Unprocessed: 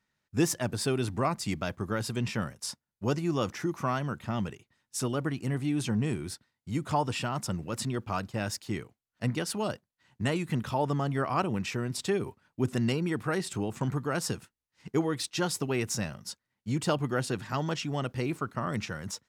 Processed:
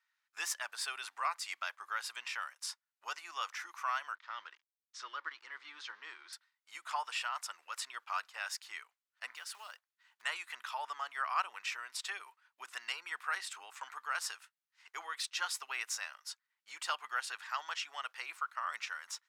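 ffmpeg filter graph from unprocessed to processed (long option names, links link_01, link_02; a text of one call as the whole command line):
ffmpeg -i in.wav -filter_complex "[0:a]asettb=1/sr,asplit=3[link_01][link_02][link_03];[link_01]atrim=end=4.154[link_04];[link_02]atrim=start=4.15:end=6.33,asetpts=PTS-STARTPTS,afade=type=in:duration=0.004:curve=qsin,afade=type=out:start_time=2.176:duration=0.004:curve=qsin,aeval=exprs='sgn(val(0))*max(abs(val(0))-0.00282,0)':channel_layout=same,highpass=230,equalizer=frequency=330:width_type=q:width=4:gain=9,equalizer=frequency=730:width_type=q:width=4:gain=-9,equalizer=frequency=2600:width_type=q:width=4:gain=-7,lowpass=frequency=5100:width=0.5412,lowpass=frequency=5100:width=1.3066[link_05];[link_03]atrim=start=6.326[link_06];[link_04][link_05]acrossfade=duration=0.004:curve1=hsin:curve2=qsin[link_07];[link_07][link_06]acrossfade=duration=0.004:curve1=qsin:curve2=hsin,asettb=1/sr,asplit=3[link_08][link_09][link_10];[link_08]atrim=end=9.364[link_11];[link_09]atrim=start=9.36:end=10.22,asetpts=PTS-STARTPTS,afade=type=in:duration=0.004:curve=qsin,afade=type=out:start_time=0.856:duration=0.004:curve=qsin,acompressor=threshold=-35dB:ratio=5:attack=3.2:release=140:knee=1:detection=peak,acrusher=bits=5:mode=log:mix=0:aa=0.000001[link_12];[link_10]atrim=start=10.216[link_13];[link_11][link_12]acrossfade=duration=0.004:curve1=hsin:curve2=qsin[link_14];[link_14][link_13]acrossfade=duration=0.004:curve1=qsin:curve2=hsin,highpass=frequency=1100:width=0.5412,highpass=frequency=1100:width=1.3066,highshelf=frequency=4100:gain=-8,volume=1dB" out.wav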